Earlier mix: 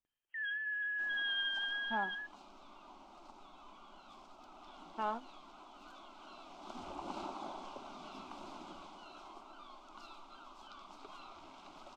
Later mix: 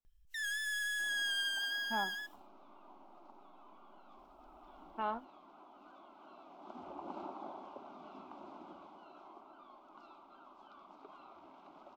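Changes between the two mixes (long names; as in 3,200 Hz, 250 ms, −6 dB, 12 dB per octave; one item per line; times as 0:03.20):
first sound: remove linear-phase brick-wall band-pass 280–3,300 Hz
second sound: add resonant band-pass 460 Hz, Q 0.54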